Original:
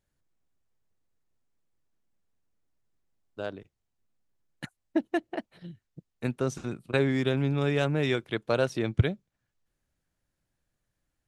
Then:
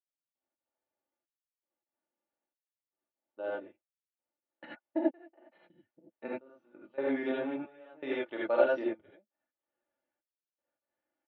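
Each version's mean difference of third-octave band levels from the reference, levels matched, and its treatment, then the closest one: 12.0 dB: step gate "...x.xxxxx." 129 bpm -24 dB; speaker cabinet 400–2500 Hz, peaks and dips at 490 Hz +5 dB, 790 Hz +4 dB, 1100 Hz -3 dB, 1600 Hz -5 dB, 2300 Hz -6 dB; comb 3.4 ms, depth 67%; non-linear reverb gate 0.11 s rising, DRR -5.5 dB; gain -7.5 dB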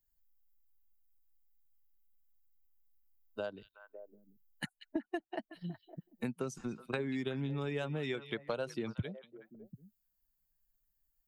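4.0 dB: per-bin expansion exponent 1.5; compressor 4:1, threshold -43 dBFS, peak gain reduction 21.5 dB; on a send: delay with a stepping band-pass 0.185 s, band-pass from 3400 Hz, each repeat -1.4 oct, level -10 dB; on the sum: three-band squash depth 40%; gain +7 dB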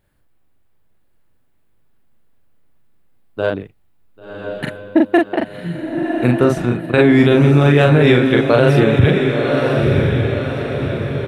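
5.5 dB: bell 6200 Hz -13 dB 0.91 oct; doubler 41 ms -3 dB; diffused feedback echo 1.073 s, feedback 52%, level -5.5 dB; maximiser +15.5 dB; gain -1 dB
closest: second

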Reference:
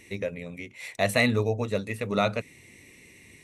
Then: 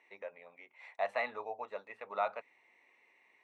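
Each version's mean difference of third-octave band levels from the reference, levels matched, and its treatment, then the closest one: 10.5 dB: ladder band-pass 990 Hz, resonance 50%; gain +3.5 dB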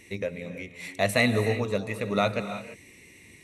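3.0 dB: non-linear reverb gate 0.36 s rising, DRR 9.5 dB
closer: second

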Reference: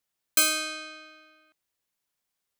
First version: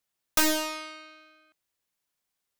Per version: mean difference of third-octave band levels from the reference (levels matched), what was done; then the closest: 4.0 dB: Doppler distortion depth 0.88 ms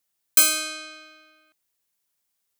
1.5 dB: high shelf 5500 Hz +8 dB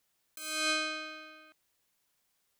7.5 dB: negative-ratio compressor -35 dBFS, ratio -1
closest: second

